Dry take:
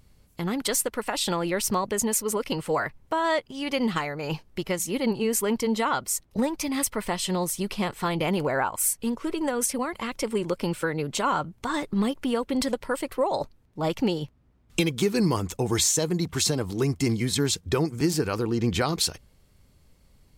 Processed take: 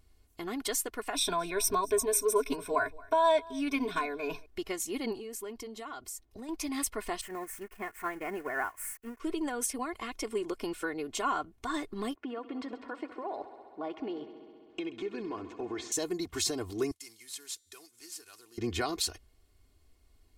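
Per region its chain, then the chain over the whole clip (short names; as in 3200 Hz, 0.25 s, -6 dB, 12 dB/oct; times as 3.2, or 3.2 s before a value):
1.14–4.46 ripple EQ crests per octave 1.6, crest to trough 16 dB + echo 0.225 s -22.5 dB
5.18–6.49 compressor 3:1, threshold -33 dBFS + bell 1500 Hz -2.5 dB 2.1 oct
7.21–9.2 switching spikes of -20.5 dBFS + expander -21 dBFS + resonant high shelf 2700 Hz -12.5 dB, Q 3
12.15–15.92 BPF 190–2200 Hz + compressor 3:1, threshold -27 dBFS + multi-head echo 66 ms, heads all three, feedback 67%, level -19 dB
16.91–18.58 CVSD 64 kbps + pre-emphasis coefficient 0.97 + resonator 150 Hz, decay 1.9 s, mix 30%
whole clip: bell 140 Hz -11.5 dB 0.43 oct; comb 2.8 ms, depth 65%; gain -8 dB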